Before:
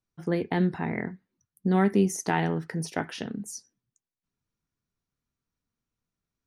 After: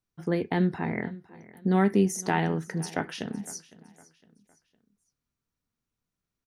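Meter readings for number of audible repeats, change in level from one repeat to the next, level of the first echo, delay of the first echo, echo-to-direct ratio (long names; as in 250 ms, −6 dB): 2, −8.0 dB, −20.0 dB, 509 ms, −19.5 dB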